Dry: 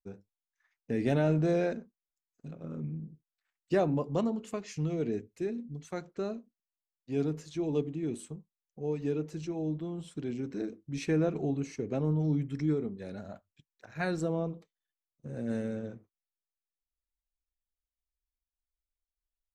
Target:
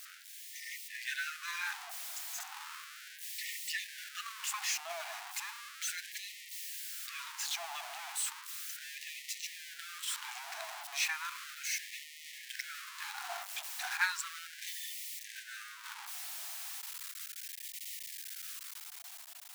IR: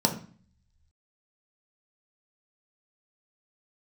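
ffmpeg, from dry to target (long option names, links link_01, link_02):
-filter_complex "[0:a]aeval=exprs='val(0)+0.5*0.0141*sgn(val(0))':channel_layout=same,equalizer=frequency=1100:width=1.5:gain=-2,dynaudnorm=framelen=150:gausssize=13:maxgain=6dB,asplit=3[link_01][link_02][link_03];[link_01]afade=type=out:start_time=15.42:duration=0.02[link_04];[link_02]agate=range=-33dB:threshold=-22dB:ratio=3:detection=peak,afade=type=in:start_time=15.42:duration=0.02,afade=type=out:start_time=15.83:duration=0.02[link_05];[link_03]afade=type=in:start_time=15.83:duration=0.02[link_06];[link_04][link_05][link_06]amix=inputs=3:normalize=0,afftfilt=real='re*gte(b*sr/1024,630*pow(1800/630,0.5+0.5*sin(2*PI*0.35*pts/sr)))':imag='im*gte(b*sr/1024,630*pow(1800/630,0.5+0.5*sin(2*PI*0.35*pts/sr)))':win_size=1024:overlap=0.75"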